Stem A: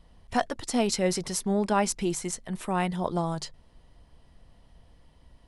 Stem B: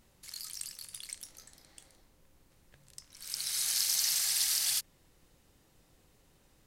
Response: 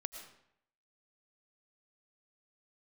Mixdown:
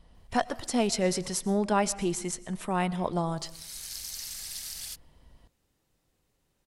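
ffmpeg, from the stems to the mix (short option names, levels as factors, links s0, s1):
-filter_complex "[0:a]volume=0.668,asplit=3[s0][s1][s2];[s1]volume=0.473[s3];[1:a]adelay=150,volume=0.355[s4];[s2]apad=whole_len=304905[s5];[s4][s5]sidechaincompress=threshold=0.00447:ratio=8:attack=16:release=154[s6];[2:a]atrim=start_sample=2205[s7];[s3][s7]afir=irnorm=-1:irlink=0[s8];[s0][s6][s8]amix=inputs=3:normalize=0"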